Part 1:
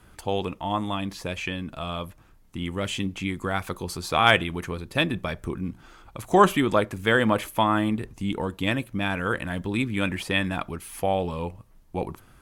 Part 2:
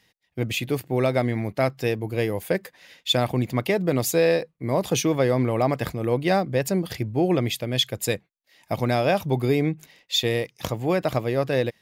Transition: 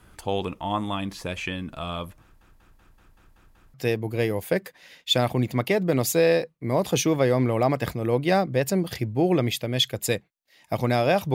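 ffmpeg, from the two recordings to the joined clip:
-filter_complex "[0:a]apad=whole_dur=11.34,atrim=end=11.34,asplit=8[a][b][c][d][e][f][g][h];[a]atrim=end=2.412[i];[b]atrim=start=2.218:end=2.412[j];[c]atrim=start=2.218:end=2.412[k];[d]atrim=start=2.218:end=2.412[l];[e]atrim=start=2.218:end=2.412[m];[f]atrim=start=2.218:end=2.412[n];[g]atrim=start=2.218:end=2.412[o];[h]atrim=start=2.218:end=2.412[p];[1:a]atrim=start=1.728:end=9.33[q];[i][j]acrossfade=d=0.004:c1=hsin:c2=hsin[r];[r][k]acrossfade=d=0.004:c1=hsin:c2=hsin[s];[s][l]acrossfade=d=0.004:c1=hsin:c2=hsin[t];[t][m]acrossfade=d=0.004:c1=hsin:c2=hsin[u];[u][n]acrossfade=d=0.004:c1=hsin:c2=hsin[v];[v][o]acrossfade=d=0.004:c1=hsin:c2=hsin[w];[w][p]acrossfade=d=0.004:c1=hsin:c2=hsin[x];[x][q]acrossfade=d=0.004:c1=hsin:c2=hsin"

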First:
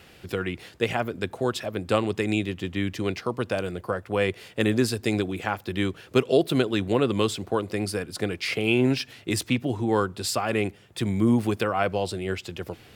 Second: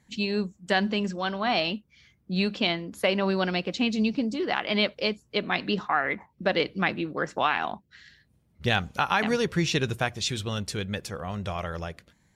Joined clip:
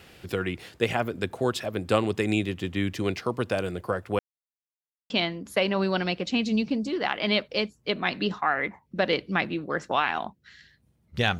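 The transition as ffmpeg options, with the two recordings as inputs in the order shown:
-filter_complex "[0:a]apad=whole_dur=11.39,atrim=end=11.39,asplit=2[a][b];[a]atrim=end=4.19,asetpts=PTS-STARTPTS,afade=t=out:st=4.186:d=0.004:c=hsin[c];[b]atrim=start=4.19:end=5.1,asetpts=PTS-STARTPTS,volume=0[d];[1:a]atrim=start=2.57:end=8.86,asetpts=PTS-STARTPTS,afade=t=in:d=0.004:c=hsin[e];[c][d][e]concat=n=3:v=0:a=1"

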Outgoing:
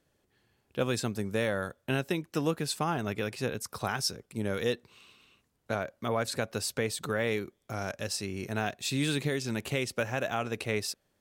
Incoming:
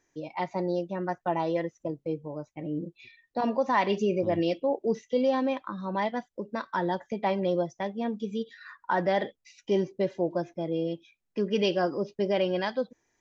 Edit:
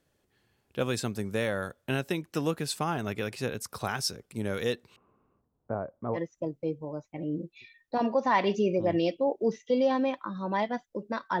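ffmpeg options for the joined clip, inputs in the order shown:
-filter_complex "[0:a]asettb=1/sr,asplit=3[a][b][c];[a]atrim=end=4.964[d];[b]atrim=start=4.96:end=6.19,asetpts=PTS-STARTPTS,afade=t=in:d=0.004:c=qsin,afade=t=out:st=1.226:d=0.004:c=qsin,lowpass=f=1.1k:w=0.5412,lowpass=f=1.1k:w=1.3066[e];[c]atrim=start=6.186[f];[d][e]acrossfade=d=0.004:c1=hsin:c2=qsin[g];[g][f]acrossfade=d=0.004:c1=qsin:c2=hsin,apad=whole_dur=11.4,atrim=end=11.4,atrim=end=6.19,asetpts=PTS-STARTPTS[h];[1:a]atrim=start=1.56:end=6.83,asetpts=PTS-STARTPTS[i];[h][i]acrossfade=d=0.06:c1=tri:c2=tri"

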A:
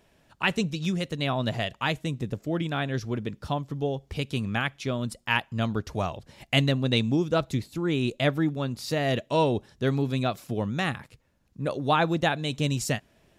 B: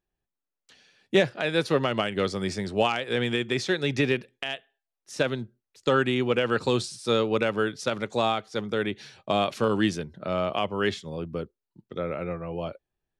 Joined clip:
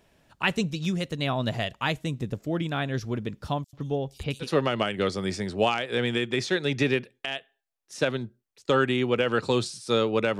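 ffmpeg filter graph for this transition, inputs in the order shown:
-filter_complex "[0:a]asettb=1/sr,asplit=3[a][b][c];[a]atrim=end=3.644[d];[b]atrim=start=3.64:end=4.48,asetpts=PTS-STARTPTS,afade=t=in:d=0.004:c=qsin,afade=t=out:st=0.836:d=0.004:c=qsin,acrossover=split=4500[e][f];[e]adelay=90[g];[g][f]amix=inputs=2:normalize=0,atrim=end_sample=37044[h];[c]atrim=start=4.476[i];[d][h]acrossfade=d=0.004:c1=hsin:c2=qsin[j];[j][i]acrossfade=d=0.004:c1=qsin:c2=hsin,apad=whole_dur=10.39,atrim=end=10.39,atrim=end=4.48,asetpts=PTS-STARTPTS[k];[1:a]atrim=start=1.58:end=7.57,asetpts=PTS-STARTPTS[l];[k][l]acrossfade=d=0.08:c1=tri:c2=tri"

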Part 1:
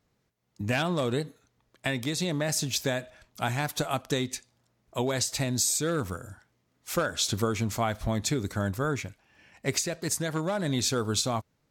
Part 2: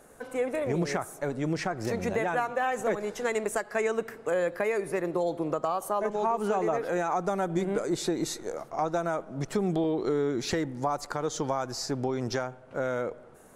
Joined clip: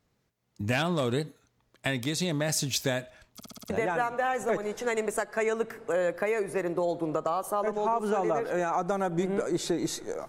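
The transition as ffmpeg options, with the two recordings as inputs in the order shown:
-filter_complex "[0:a]apad=whole_dur=10.28,atrim=end=10.28,asplit=6[a][b][c][d][e][f];[a]atrim=end=3.402[g];[b]atrim=start=3.338:end=3.402[h];[c]atrim=start=3.338:end=3.402[i];[d]atrim=start=3.338:end=3.402[j];[e]atrim=start=3.338:end=3.402[k];[f]atrim=start=3.338:end=3.402[l];[1:a]atrim=start=2.078:end=8.66[m];[g][h]acrossfade=d=0.004:c1=hsin:c2=hsin[n];[n][i]acrossfade=d=0.004:c1=hsin:c2=hsin[o];[o][j]acrossfade=d=0.004:c1=hsin:c2=hsin[p];[p][k]acrossfade=d=0.004:c1=hsin:c2=hsin[q];[q][l]acrossfade=d=0.004:c1=hsin:c2=hsin[r];[r][m]acrossfade=d=0.004:c1=hsin:c2=hsin"

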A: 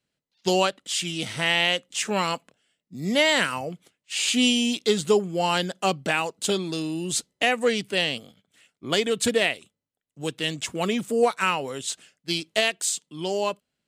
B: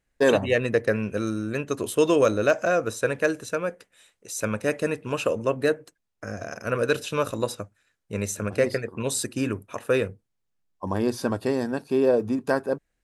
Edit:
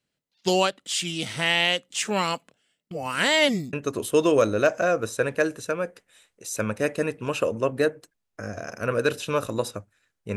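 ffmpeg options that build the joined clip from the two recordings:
-filter_complex "[0:a]apad=whole_dur=10.36,atrim=end=10.36,asplit=2[a][b];[a]atrim=end=2.912[c];[b]atrim=start=2.908:end=3.732,asetpts=PTS-STARTPTS,areverse[d];[1:a]atrim=start=1.568:end=8.2[e];[c][d]acrossfade=d=0.004:c1=hsin:c2=hsin[f];[f][e]acrossfade=d=0.004:c1=hsin:c2=hsin"

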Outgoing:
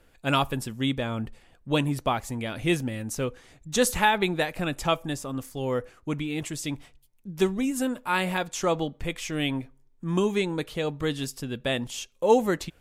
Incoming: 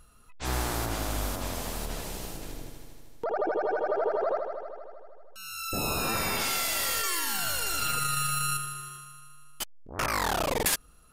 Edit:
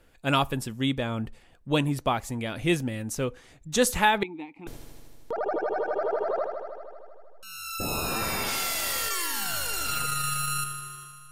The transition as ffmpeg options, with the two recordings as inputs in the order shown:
-filter_complex "[0:a]asettb=1/sr,asplit=3[a][b][c];[a]atrim=end=4.234[d];[b]atrim=start=4.23:end=4.67,asetpts=PTS-STARTPTS,afade=t=in:d=0.004:c=qsin,afade=t=out:st=0.436:d=0.004:c=qsin,asplit=3[e][f][g];[e]bandpass=f=300:t=q:w=8,volume=0dB[h];[f]bandpass=f=870:t=q:w=8,volume=-6dB[i];[g]bandpass=f=2.24k:t=q:w=8,volume=-9dB[j];[h][i][j]amix=inputs=3:normalize=0[k];[c]atrim=start=4.666[l];[d][k]acrossfade=d=0.004:c1=hsin:c2=qsin[m];[m][l]acrossfade=d=0.004:c1=qsin:c2=hsin,apad=whole_dur=11.31,atrim=end=11.31,atrim=end=4.672[n];[1:a]atrim=start=2.598:end=9.24[o];[n][o]acrossfade=d=0.004:c1=hsin:c2=hsin"

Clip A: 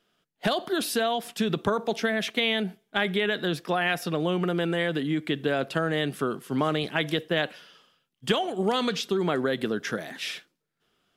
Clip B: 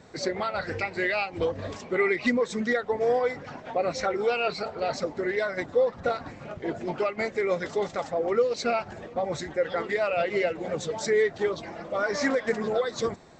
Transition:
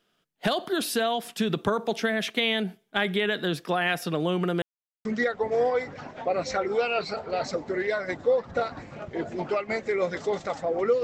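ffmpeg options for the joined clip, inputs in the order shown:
-filter_complex "[0:a]apad=whole_dur=11.03,atrim=end=11.03,asplit=2[a][b];[a]atrim=end=4.62,asetpts=PTS-STARTPTS,afade=t=out:st=4.616:d=0.004:c=hsin[c];[b]atrim=start=4.62:end=5.05,asetpts=PTS-STARTPTS,volume=0[d];[1:a]atrim=start=2.54:end=8.52,asetpts=PTS-STARTPTS,afade=t=in:d=0.004:c=hsin[e];[c][d][e]concat=n=3:v=0:a=1"

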